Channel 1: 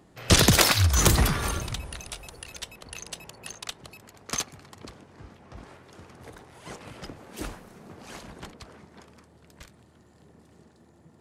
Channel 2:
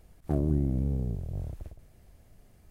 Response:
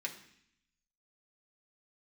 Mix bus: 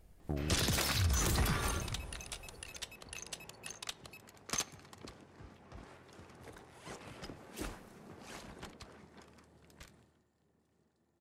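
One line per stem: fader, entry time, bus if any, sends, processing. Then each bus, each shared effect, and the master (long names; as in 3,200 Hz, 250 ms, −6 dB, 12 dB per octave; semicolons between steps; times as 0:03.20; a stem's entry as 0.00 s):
0:09.97 −7.5 dB → 0:10.29 −20 dB, 0.20 s, send −13.5 dB, no processing
−5.0 dB, 0.00 s, no send, downward compressor, threshold −28 dBFS, peak gain reduction 7.5 dB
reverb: on, RT60 0.65 s, pre-delay 3 ms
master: brickwall limiter −23 dBFS, peak gain reduction 10.5 dB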